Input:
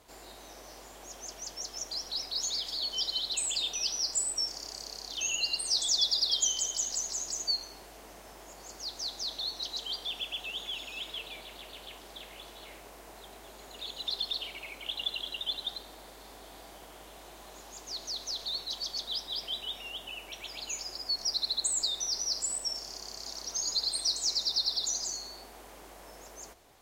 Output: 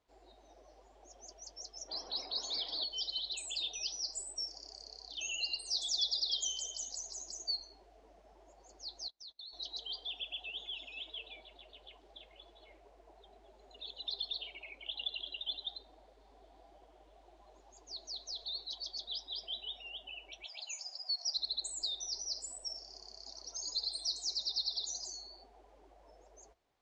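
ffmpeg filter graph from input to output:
-filter_complex "[0:a]asettb=1/sr,asplit=3[a][b][c];[a]atrim=end=1.884[d];[b]atrim=start=1.88:end=2.84,asetpts=PTS-STARTPTS,afade=t=in:d=0.004:c=qsin,afade=t=out:st=0.956:d=0.004:c=qsin,lowpass=3.9k,acontrast=65,lowshelf=f=120:g=-7.5[e];[c]atrim=start=2.836[f];[d][e]acrossfade=d=0.004:c1=hsin:c2=qsin[g];[g][f]acrossfade=d=0.004:c1=qsin:c2=hsin,asettb=1/sr,asplit=3[h][i][j];[h]atrim=end=9.084[k];[i]atrim=start=9.08:end=9.53,asetpts=PTS-STARTPTS,afade=t=in:d=0.004:c=qsin,afade=t=out:st=0.446:d=0.004:c=qsin,agate=range=-26dB:threshold=-39dB:ratio=16:release=100:detection=peak,acompressor=threshold=-39dB:ratio=12:attack=3.2:release=140:knee=1:detection=peak[l];[j]atrim=start=9.526[m];[k][l]acrossfade=d=0.004:c1=hsin:c2=qsin[n];[n][m]acrossfade=d=0.004:c1=qsin:c2=hsin,asettb=1/sr,asplit=3[o][p][q];[o]atrim=end=20.454[r];[p]atrim=start=20.45:end=21.37,asetpts=PTS-STARTPTS,afade=t=in:d=0.004:c=qsin,afade=t=out:st=0.916:d=0.004:c=qsin,highpass=f=490:w=0.5412,highpass=f=490:w=1.3066,highshelf=f=5.9k:g=5.5[s];[q]atrim=start=21.366[t];[r][s]acrossfade=d=0.004:c1=hsin:c2=qsin[u];[u][t]acrossfade=d=0.004:c1=qsin:c2=hsin,afftdn=nr=15:nf=-43,lowpass=5.4k,volume=-4.5dB"

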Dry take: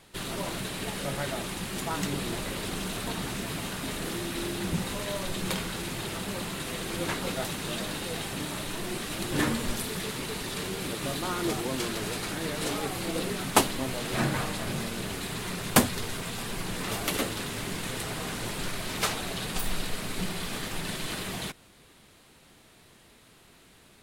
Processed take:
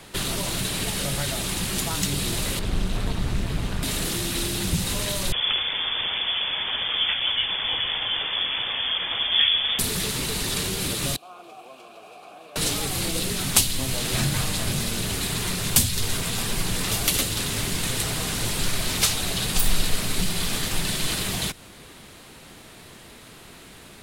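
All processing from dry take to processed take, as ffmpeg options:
-filter_complex "[0:a]asettb=1/sr,asplit=3[a][b][c];[a]atrim=end=2.594[d];[b]atrim=start=2.59:end=3.83,asetpts=PTS-STARTPTS,afade=t=in:d=0.004:c=qsin,afade=t=out:st=1.236:d=0.004:c=qsin,lowpass=f=2.2k:p=1,tremolo=f=200:d=0.667,lowshelf=f=110:g=12[e];[c]atrim=start=3.826[f];[d][e]acrossfade=d=0.004:c1=hsin:c2=qsin[g];[g][f]acrossfade=d=0.004:c1=qsin:c2=hsin,asettb=1/sr,asplit=3[h][i][j];[h]atrim=end=5.324[k];[i]atrim=start=5.32:end=9.79,asetpts=PTS-STARTPTS,afade=t=in:d=0.004:c=qsin,afade=t=out:st=4.466:d=0.004:c=qsin,highpass=44,lowpass=f=3.1k:t=q:w=0.5098,lowpass=f=3.1k:t=q:w=0.6013,lowpass=f=3.1k:t=q:w=0.9,lowpass=f=3.1k:t=q:w=2.563,afreqshift=-3600[l];[j]atrim=start=9.786[m];[k][l]acrossfade=d=0.004:c1=hsin:c2=qsin[n];[n][m]acrossfade=d=0.004:c1=qsin:c2=hsin,asettb=1/sr,asplit=3[o][p][q];[o]atrim=end=11.164[r];[p]atrim=start=11.16:end=12.56,asetpts=PTS-STARTPTS,afade=t=in:d=0.004:c=qsin,afade=t=out:st=1.396:d=0.004:c=qsin,acrossover=split=240|1000[s][t][u];[s]acompressor=threshold=-48dB:ratio=4[v];[t]acompressor=threshold=-45dB:ratio=4[w];[u]acompressor=threshold=-48dB:ratio=4[x];[v][w][x]amix=inputs=3:normalize=0,asplit=3[y][z][aa];[y]bandpass=f=730:t=q:w=8,volume=0dB[ab];[z]bandpass=f=1.09k:t=q:w=8,volume=-6dB[ac];[aa]bandpass=f=2.44k:t=q:w=8,volume=-9dB[ad];[ab][ac][ad]amix=inputs=3:normalize=0,aemphasis=mode=production:type=50fm[ae];[q]atrim=start=12.556[af];[r][ae]acrossfade=d=0.004:c1=hsin:c2=qsin[ag];[ag][af]acrossfade=d=0.004:c1=qsin:c2=hsin,acrossover=split=130|3000[ah][ai][aj];[ai]acompressor=threshold=-42dB:ratio=6[ak];[ah][ak][aj]amix=inputs=3:normalize=0,alimiter=level_in=12dB:limit=-1dB:release=50:level=0:latency=1,volume=-1dB"

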